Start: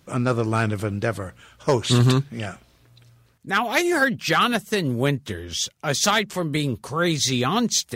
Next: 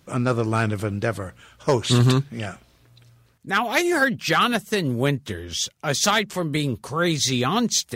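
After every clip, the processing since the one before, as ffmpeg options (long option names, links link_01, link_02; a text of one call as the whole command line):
ffmpeg -i in.wav -af anull out.wav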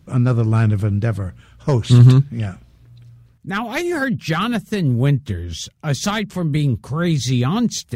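ffmpeg -i in.wav -af "bass=frequency=250:gain=14,treble=frequency=4000:gain=-2,volume=-3dB" out.wav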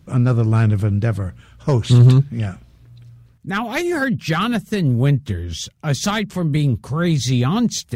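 ffmpeg -i in.wav -af "acontrast=24,volume=-4dB" out.wav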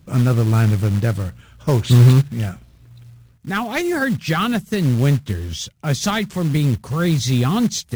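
ffmpeg -i in.wav -af "acrusher=bits=5:mode=log:mix=0:aa=0.000001" out.wav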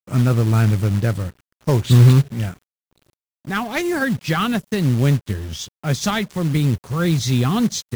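ffmpeg -i in.wav -af "aeval=exprs='sgn(val(0))*max(abs(val(0))-0.0119,0)':channel_layout=same" out.wav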